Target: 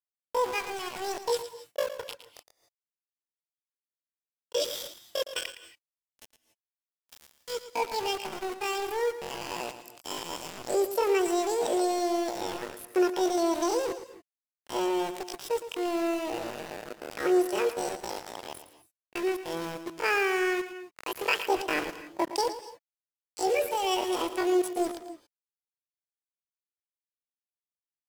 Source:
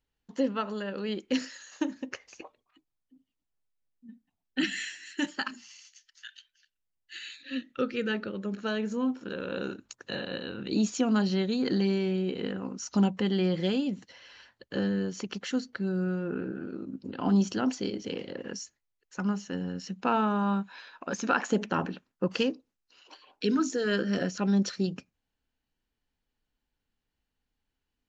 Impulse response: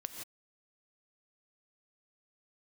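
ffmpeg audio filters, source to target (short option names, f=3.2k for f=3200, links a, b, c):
-filter_complex "[0:a]aeval=exprs='val(0)*gte(abs(val(0)),0.0224)':c=same,asetrate=80880,aresample=44100,atempo=0.545254,asplit=2[a][b];[1:a]atrim=start_sample=2205,adelay=113[c];[b][c]afir=irnorm=-1:irlink=0,volume=-9dB[d];[a][d]amix=inputs=2:normalize=0"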